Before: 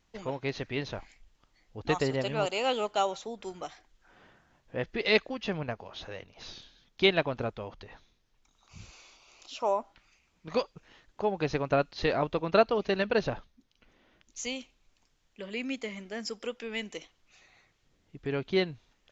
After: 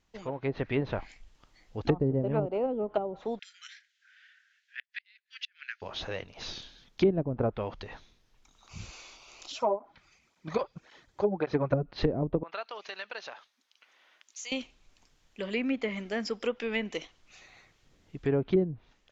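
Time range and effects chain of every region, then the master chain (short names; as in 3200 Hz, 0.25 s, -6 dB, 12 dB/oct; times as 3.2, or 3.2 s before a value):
3.39–5.82 steep high-pass 1500 Hz 72 dB/oct + flipped gate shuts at -28 dBFS, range -38 dB + air absorption 88 m
9.52–11.83 notch 2800 Hz, Q 9.3 + tape flanging out of phase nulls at 1.8 Hz, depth 4.7 ms
12.43–14.52 HPF 970 Hz + compressor 2:1, threshold -50 dBFS
whole clip: treble ducked by the level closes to 320 Hz, closed at -25 dBFS; AGC gain up to 8 dB; gain -2.5 dB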